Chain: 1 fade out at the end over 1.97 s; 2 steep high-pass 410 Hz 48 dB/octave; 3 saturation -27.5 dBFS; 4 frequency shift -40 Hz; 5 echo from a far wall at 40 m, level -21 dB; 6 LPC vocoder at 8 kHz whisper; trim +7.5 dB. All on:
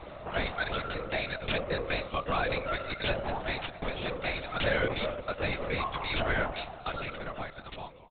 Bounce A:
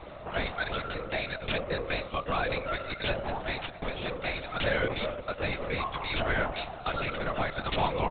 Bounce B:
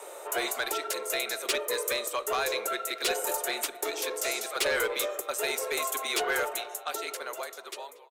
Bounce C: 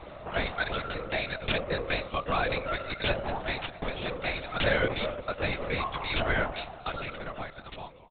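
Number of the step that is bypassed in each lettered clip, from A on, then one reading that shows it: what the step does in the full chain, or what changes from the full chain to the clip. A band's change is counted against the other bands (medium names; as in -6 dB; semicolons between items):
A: 1, momentary loudness spread change -3 LU; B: 6, 250 Hz band -6.5 dB; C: 3, distortion -16 dB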